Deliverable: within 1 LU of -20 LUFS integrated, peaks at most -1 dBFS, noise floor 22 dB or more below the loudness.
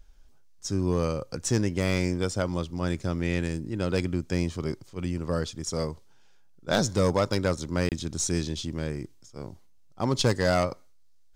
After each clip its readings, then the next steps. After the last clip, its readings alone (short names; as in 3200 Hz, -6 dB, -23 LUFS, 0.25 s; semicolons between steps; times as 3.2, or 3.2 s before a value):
clipped 0.3%; flat tops at -15.0 dBFS; dropouts 1; longest dropout 28 ms; loudness -28.5 LUFS; peak -15.0 dBFS; loudness target -20.0 LUFS
-> clip repair -15 dBFS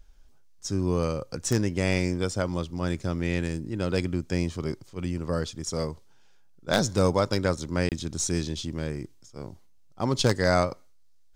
clipped 0.0%; dropouts 1; longest dropout 28 ms
-> interpolate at 7.89, 28 ms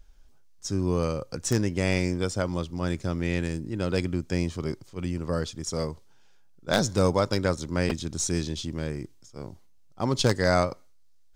dropouts 0; loudness -28.0 LUFS; peak -6.0 dBFS; loudness target -20.0 LUFS
-> gain +8 dB; limiter -1 dBFS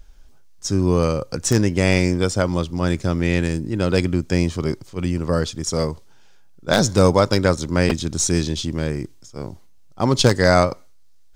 loudness -20.0 LUFS; peak -1.0 dBFS; noise floor -45 dBFS